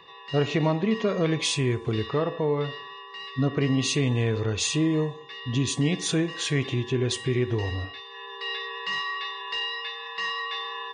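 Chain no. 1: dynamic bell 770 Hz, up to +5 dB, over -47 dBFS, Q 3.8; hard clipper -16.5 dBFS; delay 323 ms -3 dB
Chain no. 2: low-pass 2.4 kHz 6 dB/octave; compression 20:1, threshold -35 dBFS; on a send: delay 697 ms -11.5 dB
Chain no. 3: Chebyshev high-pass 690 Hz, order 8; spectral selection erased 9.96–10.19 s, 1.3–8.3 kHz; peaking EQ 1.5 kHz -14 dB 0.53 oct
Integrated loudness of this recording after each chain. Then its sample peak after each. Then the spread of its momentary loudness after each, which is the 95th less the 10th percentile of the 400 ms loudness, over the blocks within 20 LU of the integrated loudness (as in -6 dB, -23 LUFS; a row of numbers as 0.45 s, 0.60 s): -25.0 LUFS, -39.0 LUFS, -34.0 LUFS; -12.0 dBFS, -26.0 dBFS, -16.0 dBFS; 7 LU, 4 LU, 12 LU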